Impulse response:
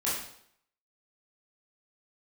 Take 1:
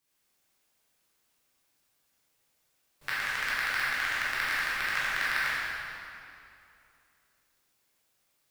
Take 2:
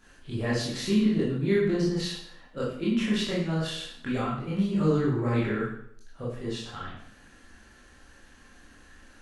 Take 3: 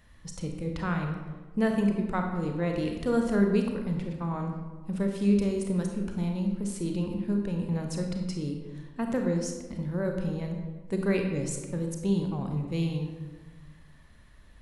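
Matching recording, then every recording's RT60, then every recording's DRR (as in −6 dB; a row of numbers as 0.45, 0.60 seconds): 2; 2.7, 0.65, 1.3 seconds; −10.5, −8.5, 2.5 decibels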